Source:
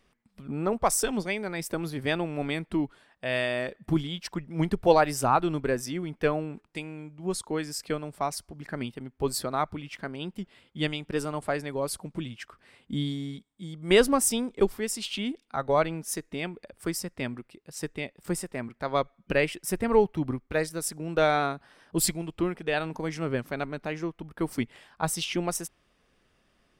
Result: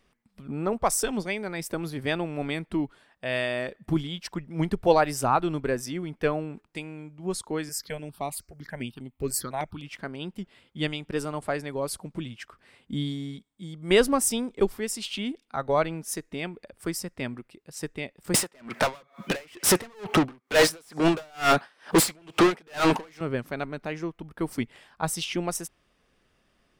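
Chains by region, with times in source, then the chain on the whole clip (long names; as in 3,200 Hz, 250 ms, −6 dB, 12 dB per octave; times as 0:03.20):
0:07.69–0:09.84: high-shelf EQ 3,400 Hz +7 dB + step-sequenced phaser 9.9 Hz 980–5,300 Hz
0:18.34–0:23.21: high-pass filter 81 Hz 24 dB per octave + mid-hump overdrive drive 39 dB, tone 6,700 Hz, clips at −9 dBFS + tremolo with a sine in dB 2.2 Hz, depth 37 dB
whole clip: no processing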